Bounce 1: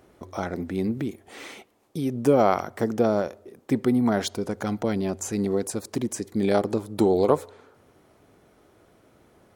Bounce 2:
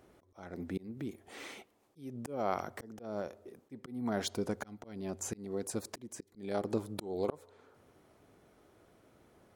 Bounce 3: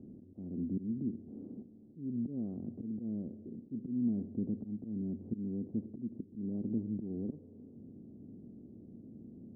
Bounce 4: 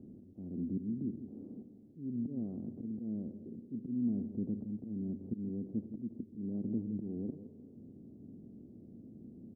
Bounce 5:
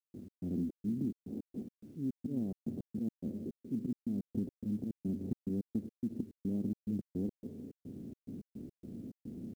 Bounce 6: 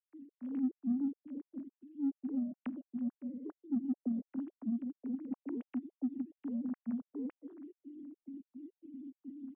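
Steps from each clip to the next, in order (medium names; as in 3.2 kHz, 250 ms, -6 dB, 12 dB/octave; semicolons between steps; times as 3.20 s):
slow attack 464 ms; trim -6 dB
spectral levelling over time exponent 0.6; in parallel at -0.5 dB: peak limiter -24 dBFS, peak gain reduction 9 dB; on the sum: four-pole ladder low-pass 280 Hz, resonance 50%; trim +1 dB
delay 166 ms -12 dB; trim -1 dB
compression 8:1, threshold -38 dBFS, peak gain reduction 9.5 dB; trance gate ".x.xx.xx.x" 107 bpm -60 dB; companded quantiser 8-bit; trim +7 dB
formants replaced by sine waves; in parallel at -9.5 dB: saturation -33 dBFS, distortion -12 dB; on the sum: trim -2 dB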